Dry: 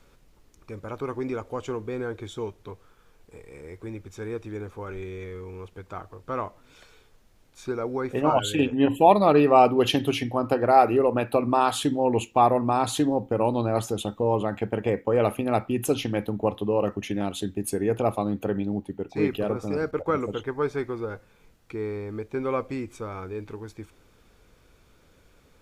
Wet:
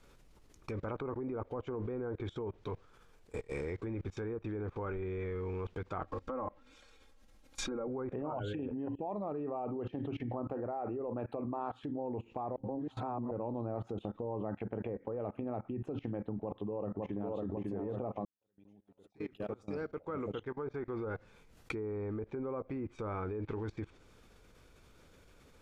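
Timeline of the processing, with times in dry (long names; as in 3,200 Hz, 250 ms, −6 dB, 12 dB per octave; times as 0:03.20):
0:06.04–0:07.88: comb filter 3.7 ms, depth 85%
0:12.56–0:13.31: reverse
0:16.31–0:17.41: delay throw 550 ms, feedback 50%, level −4.5 dB
0:18.25–0:21.96: fade in quadratic
whole clip: downward compressor 3 to 1, threshold −34 dBFS; treble cut that deepens with the level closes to 1,000 Hz, closed at −31.5 dBFS; output level in coarse steps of 23 dB; level +8.5 dB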